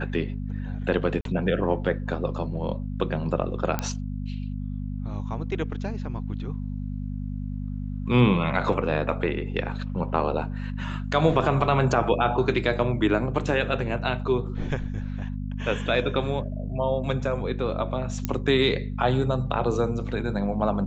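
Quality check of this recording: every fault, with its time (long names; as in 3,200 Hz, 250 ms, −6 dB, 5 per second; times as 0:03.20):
mains hum 50 Hz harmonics 5 −31 dBFS
0:01.21–0:01.25: drop-out 42 ms
0:03.79: click −11 dBFS
0:18.25: click −11 dBFS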